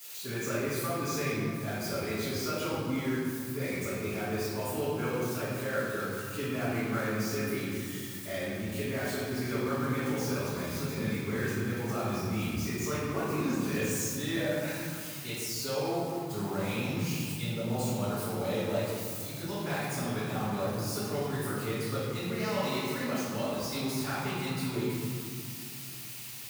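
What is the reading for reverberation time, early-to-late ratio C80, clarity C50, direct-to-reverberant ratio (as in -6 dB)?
2.3 s, -0.5 dB, -3.0 dB, -13.0 dB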